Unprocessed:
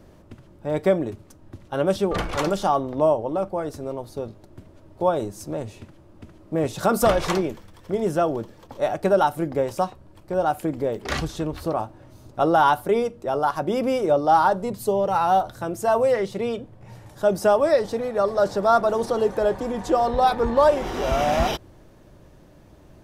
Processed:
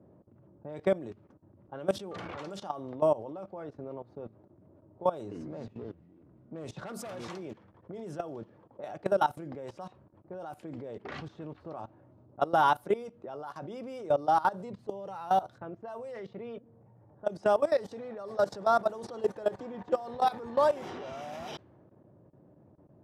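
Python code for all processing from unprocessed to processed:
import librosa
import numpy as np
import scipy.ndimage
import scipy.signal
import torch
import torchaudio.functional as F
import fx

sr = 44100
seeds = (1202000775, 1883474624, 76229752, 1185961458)

y = fx.chain(x, sr, fx.clip_hard(threshold_db=-16.5),
    fx.echo_pitch(ms=141, semitones=-5, count=3, db_per_echo=-6.0), at=(5.17, 7.28))
y = fx.chain(y, sr, fx.env_lowpass(base_hz=1900.0, full_db=-16.0),
    fx.comb_fb(f0_hz=230.0, decay_s=1.0, harmonics='all', damping=0.0, mix_pct=30), at=(15.58, 17.43))
y = scipy.signal.sosfilt(scipy.signal.butter(4, 97.0, 'highpass', fs=sr, output='sos'), y)
y = fx.env_lowpass(y, sr, base_hz=720.0, full_db=-17.0)
y = fx.level_steps(y, sr, step_db=18)
y = y * 10.0 ** (-4.5 / 20.0)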